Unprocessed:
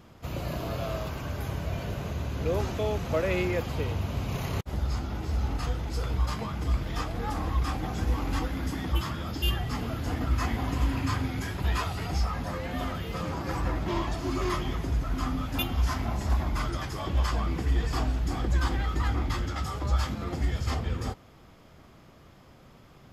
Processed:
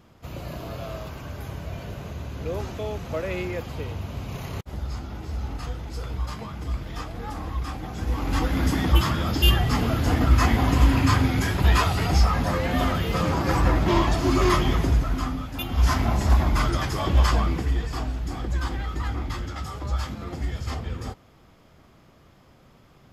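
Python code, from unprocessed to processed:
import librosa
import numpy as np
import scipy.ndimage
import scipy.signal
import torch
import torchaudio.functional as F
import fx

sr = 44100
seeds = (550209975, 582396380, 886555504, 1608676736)

y = fx.gain(x, sr, db=fx.line((7.92, -2.0), (8.6, 9.0), (14.85, 9.0), (15.58, -3.0), (15.86, 7.5), (17.34, 7.5), (17.88, -1.0)))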